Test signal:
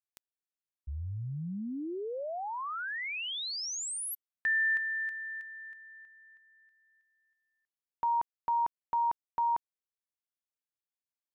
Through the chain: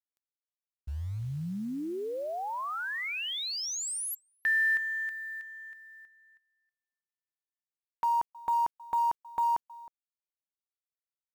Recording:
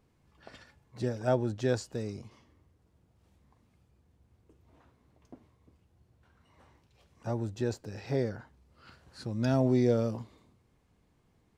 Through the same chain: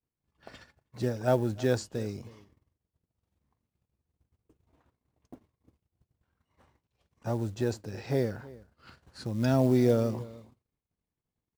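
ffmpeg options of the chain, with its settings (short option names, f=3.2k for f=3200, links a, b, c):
-filter_complex "[0:a]asplit=2[a][b];[b]adelay=314.9,volume=-20dB,highshelf=f=4k:g=-7.08[c];[a][c]amix=inputs=2:normalize=0,agate=range=-33dB:threshold=-57dB:ratio=3:release=47:detection=peak,acrusher=bits=7:mode=log:mix=0:aa=0.000001,volume=2dB"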